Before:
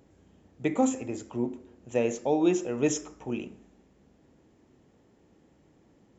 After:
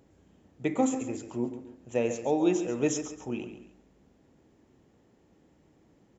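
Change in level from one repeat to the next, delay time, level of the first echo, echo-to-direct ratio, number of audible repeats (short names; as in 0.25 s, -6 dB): -10.0 dB, 0.137 s, -11.0 dB, -10.5 dB, 2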